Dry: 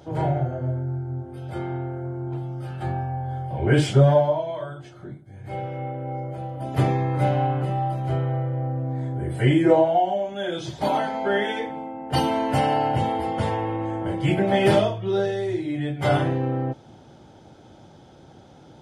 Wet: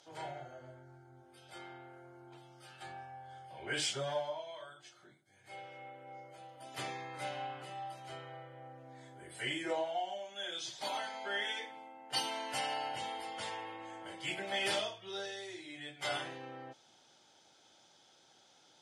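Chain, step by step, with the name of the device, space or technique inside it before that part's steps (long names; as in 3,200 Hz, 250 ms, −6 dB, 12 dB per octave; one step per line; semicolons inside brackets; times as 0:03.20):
piezo pickup straight into a mixer (low-pass filter 6,700 Hz 12 dB per octave; first difference)
level +3 dB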